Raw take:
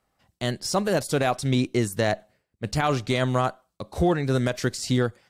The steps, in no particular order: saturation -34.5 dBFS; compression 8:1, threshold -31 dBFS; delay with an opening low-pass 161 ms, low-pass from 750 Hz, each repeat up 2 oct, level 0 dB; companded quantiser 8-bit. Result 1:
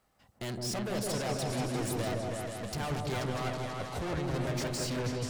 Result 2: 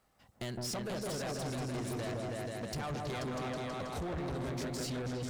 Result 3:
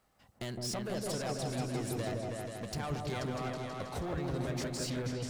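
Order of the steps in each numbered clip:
companded quantiser > saturation > compression > delay with an opening low-pass; compression > delay with an opening low-pass > companded quantiser > saturation; compression > saturation > companded quantiser > delay with an opening low-pass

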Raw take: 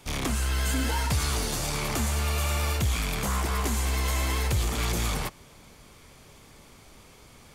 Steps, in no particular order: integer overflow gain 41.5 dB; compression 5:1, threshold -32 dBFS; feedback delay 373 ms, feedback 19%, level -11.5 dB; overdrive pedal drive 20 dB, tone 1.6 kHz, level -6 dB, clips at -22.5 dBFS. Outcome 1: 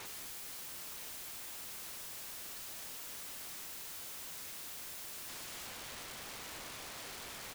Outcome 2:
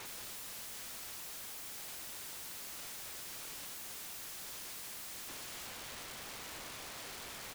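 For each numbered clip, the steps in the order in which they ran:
overdrive pedal > feedback delay > integer overflow > compression; overdrive pedal > feedback delay > compression > integer overflow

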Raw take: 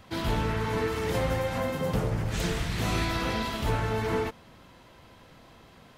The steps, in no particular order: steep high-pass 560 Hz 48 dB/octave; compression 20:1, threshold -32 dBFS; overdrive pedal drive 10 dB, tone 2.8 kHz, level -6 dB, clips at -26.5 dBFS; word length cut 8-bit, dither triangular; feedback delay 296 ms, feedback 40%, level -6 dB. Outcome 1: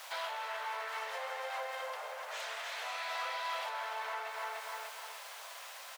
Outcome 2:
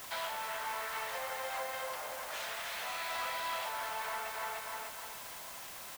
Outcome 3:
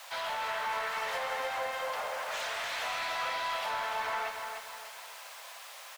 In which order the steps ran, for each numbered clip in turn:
feedback delay > word length cut > compression > overdrive pedal > steep high-pass; feedback delay > compression > steep high-pass > overdrive pedal > word length cut; word length cut > steep high-pass > compression > overdrive pedal > feedback delay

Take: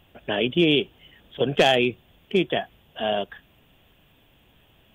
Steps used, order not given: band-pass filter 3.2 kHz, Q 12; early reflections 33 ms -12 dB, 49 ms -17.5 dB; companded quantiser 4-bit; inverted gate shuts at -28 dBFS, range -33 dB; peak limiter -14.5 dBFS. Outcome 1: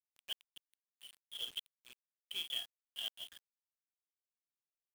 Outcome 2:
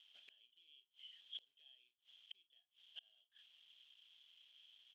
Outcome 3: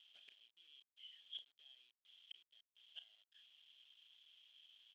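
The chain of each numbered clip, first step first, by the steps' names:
early reflections > peak limiter > band-pass filter > inverted gate > companded quantiser; peak limiter > companded quantiser > early reflections > inverted gate > band-pass filter; peak limiter > inverted gate > early reflections > companded quantiser > band-pass filter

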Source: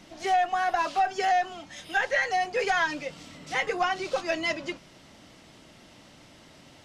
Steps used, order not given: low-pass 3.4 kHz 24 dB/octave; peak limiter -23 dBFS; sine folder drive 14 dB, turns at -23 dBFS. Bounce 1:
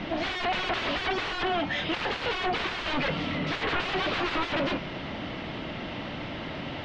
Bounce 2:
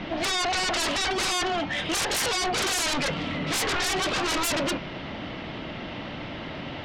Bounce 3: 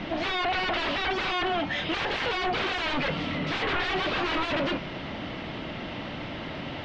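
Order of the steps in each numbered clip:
sine folder > peak limiter > low-pass; peak limiter > low-pass > sine folder; peak limiter > sine folder > low-pass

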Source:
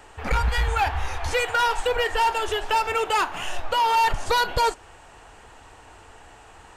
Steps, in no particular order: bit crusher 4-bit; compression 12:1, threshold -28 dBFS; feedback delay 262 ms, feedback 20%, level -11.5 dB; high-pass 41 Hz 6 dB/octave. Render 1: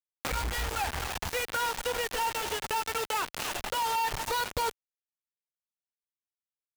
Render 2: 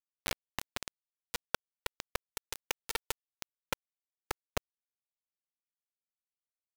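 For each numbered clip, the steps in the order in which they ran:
feedback delay > bit crusher > compression > high-pass; feedback delay > compression > high-pass > bit crusher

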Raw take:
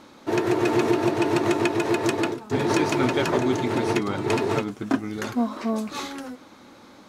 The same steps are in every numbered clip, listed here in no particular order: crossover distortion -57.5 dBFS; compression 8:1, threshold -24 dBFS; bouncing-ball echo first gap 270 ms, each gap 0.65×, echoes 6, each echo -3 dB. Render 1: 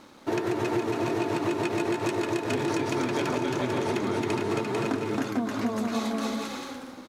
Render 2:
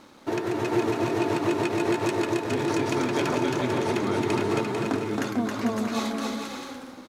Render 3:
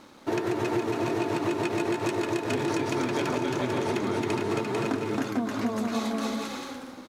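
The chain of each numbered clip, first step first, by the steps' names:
bouncing-ball echo > crossover distortion > compression; compression > bouncing-ball echo > crossover distortion; bouncing-ball echo > compression > crossover distortion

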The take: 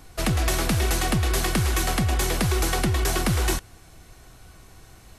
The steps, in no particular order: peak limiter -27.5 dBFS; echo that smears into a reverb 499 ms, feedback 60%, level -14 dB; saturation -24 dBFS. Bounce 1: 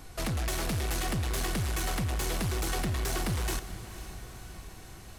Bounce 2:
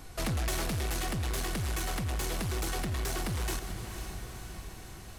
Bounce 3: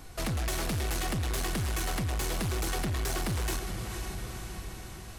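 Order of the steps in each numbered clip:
saturation > peak limiter > echo that smears into a reverb; saturation > echo that smears into a reverb > peak limiter; echo that smears into a reverb > saturation > peak limiter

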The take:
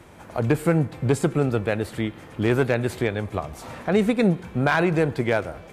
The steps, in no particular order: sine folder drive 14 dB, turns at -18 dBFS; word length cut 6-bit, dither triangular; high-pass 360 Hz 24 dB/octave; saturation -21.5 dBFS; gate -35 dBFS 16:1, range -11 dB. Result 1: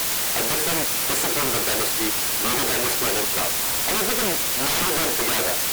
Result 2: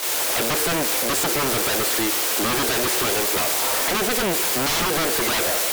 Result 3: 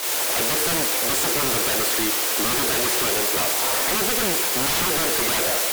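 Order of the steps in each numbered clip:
saturation > high-pass > gate > word length cut > sine folder; word length cut > gate > saturation > high-pass > sine folder; saturation > word length cut > high-pass > gate > sine folder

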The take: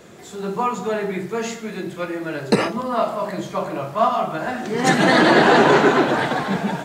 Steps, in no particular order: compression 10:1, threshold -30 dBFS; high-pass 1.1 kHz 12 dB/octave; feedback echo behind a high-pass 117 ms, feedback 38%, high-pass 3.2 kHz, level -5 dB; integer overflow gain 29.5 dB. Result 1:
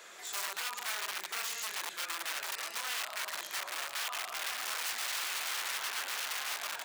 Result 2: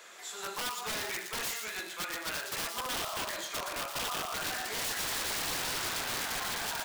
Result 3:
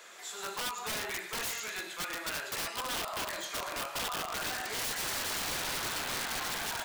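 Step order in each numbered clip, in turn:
feedback echo behind a high-pass > compression > integer overflow > high-pass; high-pass > compression > integer overflow > feedback echo behind a high-pass; high-pass > compression > feedback echo behind a high-pass > integer overflow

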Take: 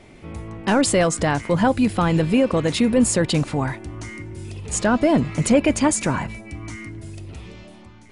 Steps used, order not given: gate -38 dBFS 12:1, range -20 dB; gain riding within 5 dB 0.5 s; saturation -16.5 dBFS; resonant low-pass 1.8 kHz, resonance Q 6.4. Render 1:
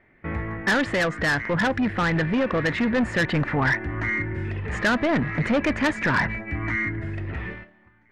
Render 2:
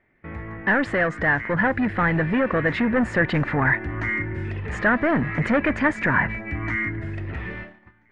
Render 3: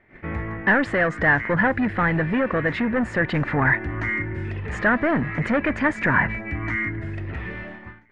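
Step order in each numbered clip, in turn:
gate > resonant low-pass > saturation > gain riding; saturation > resonant low-pass > gate > gain riding; saturation > gain riding > gate > resonant low-pass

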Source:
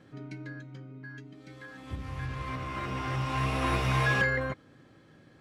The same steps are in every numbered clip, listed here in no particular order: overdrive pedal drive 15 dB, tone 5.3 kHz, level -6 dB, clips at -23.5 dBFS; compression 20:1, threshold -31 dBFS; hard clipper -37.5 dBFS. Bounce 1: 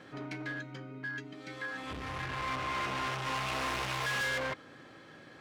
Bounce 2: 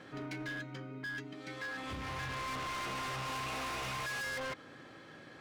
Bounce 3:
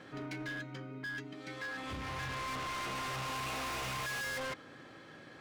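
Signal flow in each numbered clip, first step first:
hard clipper > compression > overdrive pedal; compression > overdrive pedal > hard clipper; overdrive pedal > hard clipper > compression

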